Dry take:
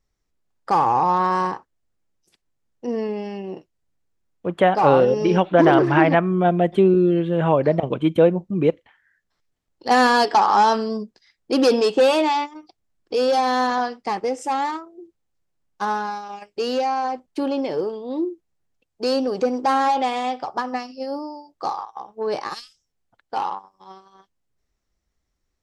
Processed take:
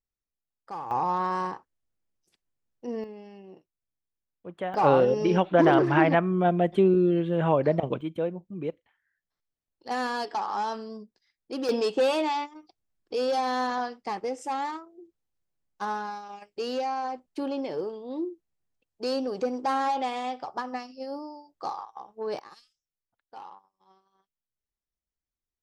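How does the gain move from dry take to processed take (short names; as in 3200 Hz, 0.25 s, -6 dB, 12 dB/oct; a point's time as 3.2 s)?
-18.5 dB
from 0.91 s -8 dB
from 3.04 s -16 dB
from 4.74 s -5 dB
from 8.01 s -14 dB
from 11.69 s -7.5 dB
from 22.39 s -19 dB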